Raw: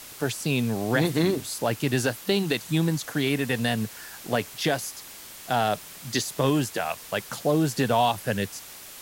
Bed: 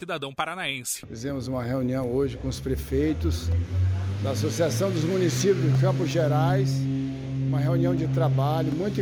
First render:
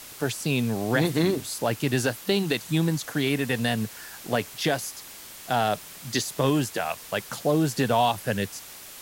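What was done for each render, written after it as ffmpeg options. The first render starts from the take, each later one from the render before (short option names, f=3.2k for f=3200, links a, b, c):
-af anull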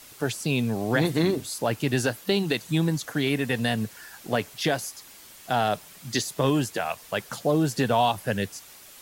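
-af "afftdn=nr=6:nf=-44"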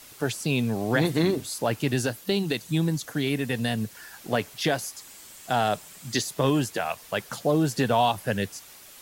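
-filter_complex "[0:a]asettb=1/sr,asplit=3[a][b][c];[a]atrim=end=1.934[d];[b]atrim=start=1.93:end=3.95,asetpts=PTS-STARTPTS,afade=t=in:d=0.004:c=qsin,afade=t=out:st=2.016:d=0.004:c=qsin,equalizer=f=1.2k:w=0.41:g=-4[e];[c]atrim=start=3.946[f];[d][e]acrossfade=d=0.004:c1=hsin:c2=qsin[g];[g][f]acrossfade=d=0.004:c1=qsin:c2=hsin,asettb=1/sr,asplit=3[h][i][j];[h]atrim=end=4.964[k];[i]atrim=start=4.96:end=6.13,asetpts=PTS-STARTPTS,afade=t=in:d=0.004:c=qsin,afade=t=out:st=1.166:d=0.004:c=qsin,equalizer=f=7.7k:t=o:w=0.35:g=6.5[l];[j]atrim=start=6.126[m];[k][l]acrossfade=d=0.004:c1=hsin:c2=qsin[n];[n][m]acrossfade=d=0.004:c1=qsin:c2=hsin"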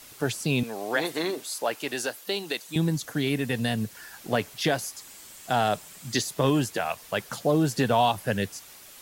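-filter_complex "[0:a]asettb=1/sr,asplit=3[a][b][c];[a]atrim=end=0.634[d];[b]atrim=start=0.63:end=2.76,asetpts=PTS-STARTPTS,afade=t=in:d=0.004:c=qsin,afade=t=out:st=2.126:d=0.004:c=qsin,highpass=450[e];[c]atrim=start=2.756[f];[d][e]acrossfade=d=0.004:c1=hsin:c2=qsin[g];[g][f]acrossfade=d=0.004:c1=qsin:c2=hsin"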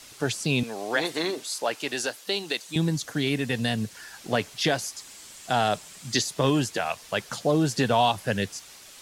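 -af "lowpass=5.9k,aemphasis=mode=production:type=50kf"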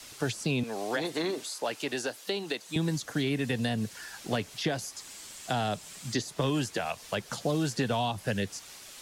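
-filter_complex "[0:a]acrossover=split=280|1000|2000[a][b][c][d];[a]acompressor=threshold=-30dB:ratio=4[e];[b]acompressor=threshold=-32dB:ratio=4[f];[c]acompressor=threshold=-42dB:ratio=4[g];[d]acompressor=threshold=-37dB:ratio=4[h];[e][f][g][h]amix=inputs=4:normalize=0"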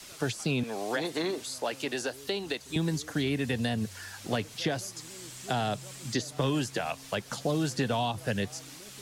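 -filter_complex "[1:a]volume=-26.5dB[a];[0:a][a]amix=inputs=2:normalize=0"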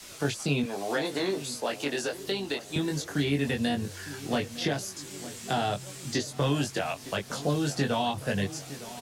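-filter_complex "[0:a]asplit=2[a][b];[b]adelay=21,volume=-3.5dB[c];[a][c]amix=inputs=2:normalize=0,asplit=2[d][e];[e]adelay=909,lowpass=f=2k:p=1,volume=-15dB,asplit=2[f][g];[g]adelay=909,lowpass=f=2k:p=1,volume=0.53,asplit=2[h][i];[i]adelay=909,lowpass=f=2k:p=1,volume=0.53,asplit=2[j][k];[k]adelay=909,lowpass=f=2k:p=1,volume=0.53,asplit=2[l][m];[m]adelay=909,lowpass=f=2k:p=1,volume=0.53[n];[d][f][h][j][l][n]amix=inputs=6:normalize=0"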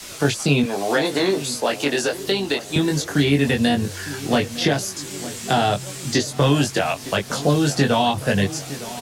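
-af "volume=9.5dB"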